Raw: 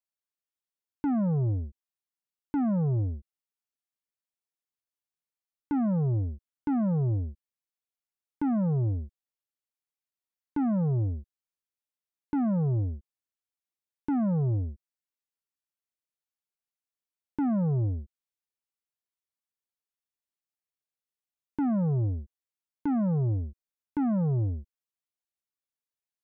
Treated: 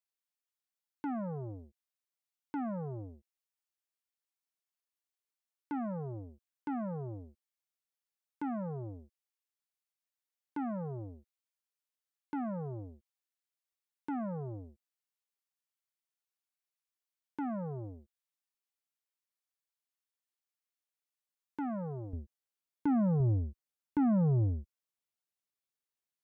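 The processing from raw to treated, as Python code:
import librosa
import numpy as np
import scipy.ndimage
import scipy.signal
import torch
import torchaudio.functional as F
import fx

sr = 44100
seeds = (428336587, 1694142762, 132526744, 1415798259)

y = fx.highpass(x, sr, hz=fx.steps((0.0, 690.0), (22.13, 120.0), (23.2, 43.0)), slope=6)
y = y * 10.0 ** (-1.0 / 20.0)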